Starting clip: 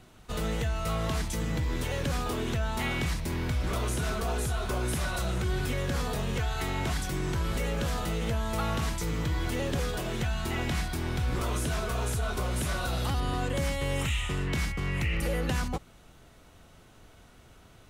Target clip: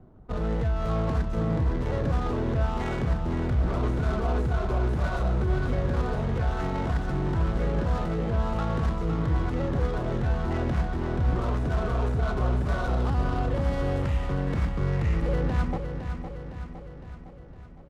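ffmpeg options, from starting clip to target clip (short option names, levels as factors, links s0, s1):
-filter_complex "[0:a]equalizer=f=2600:t=o:w=1:g=-9,acrossover=split=100[s0][s1];[s1]alimiter=level_in=1.33:limit=0.0631:level=0:latency=1:release=12,volume=0.75[s2];[s0][s2]amix=inputs=2:normalize=0,adynamicsmooth=sensitivity=6.5:basefreq=650,aecho=1:1:510|1020|1530|2040|2550|3060|3570:0.398|0.223|0.125|0.0699|0.0392|0.0219|0.0123,volume=1.68"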